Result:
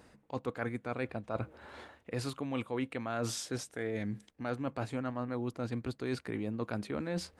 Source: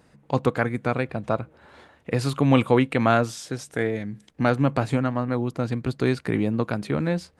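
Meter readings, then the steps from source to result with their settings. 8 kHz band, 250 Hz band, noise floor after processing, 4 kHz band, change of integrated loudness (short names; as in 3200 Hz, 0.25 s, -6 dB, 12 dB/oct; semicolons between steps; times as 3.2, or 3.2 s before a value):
-3.5 dB, -13.0 dB, -66 dBFS, -8.5 dB, -13.5 dB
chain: bell 150 Hz -9.5 dB 0.41 oct; reverse; compressor 12:1, threshold -32 dBFS, peak gain reduction 19 dB; reverse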